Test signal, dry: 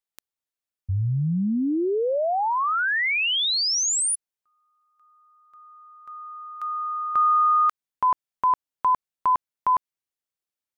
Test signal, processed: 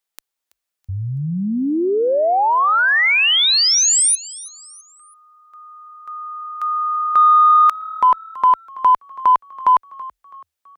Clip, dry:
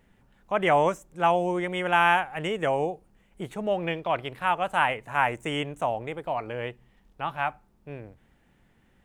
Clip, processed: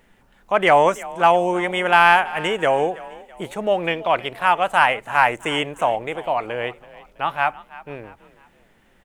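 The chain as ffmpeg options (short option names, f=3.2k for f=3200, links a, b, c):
-filter_complex "[0:a]equalizer=f=93:w=0.39:g=-9.5,acontrast=44,asplit=4[a][b][c][d];[b]adelay=329,afreqshift=38,volume=-19dB[e];[c]adelay=658,afreqshift=76,volume=-26.5dB[f];[d]adelay=987,afreqshift=114,volume=-34.1dB[g];[a][e][f][g]amix=inputs=4:normalize=0,volume=3dB"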